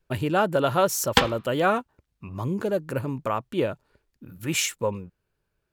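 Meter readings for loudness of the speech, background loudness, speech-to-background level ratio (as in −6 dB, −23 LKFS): −26.0 LKFS, −24.5 LKFS, −1.5 dB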